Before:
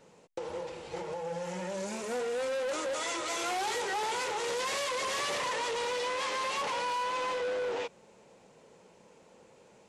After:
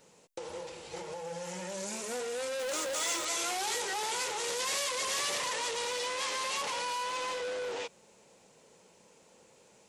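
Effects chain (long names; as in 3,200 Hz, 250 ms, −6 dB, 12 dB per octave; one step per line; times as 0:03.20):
0:02.59–0:03.25: converter with a step at zero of −43 dBFS
high-shelf EQ 3,700 Hz +12 dB
level −4 dB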